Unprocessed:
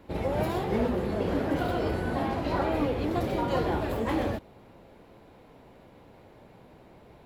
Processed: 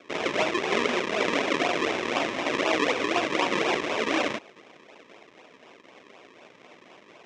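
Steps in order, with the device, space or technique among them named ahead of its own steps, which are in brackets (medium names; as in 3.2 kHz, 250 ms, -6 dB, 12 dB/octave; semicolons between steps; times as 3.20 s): circuit-bent sampling toy (decimation with a swept rate 42×, swing 100% 4 Hz; cabinet simulation 490–5500 Hz, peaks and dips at 520 Hz -4 dB, 830 Hz -5 dB, 1.4 kHz -7 dB, 2.2 kHz +4 dB, 4.5 kHz -9 dB); trim +9 dB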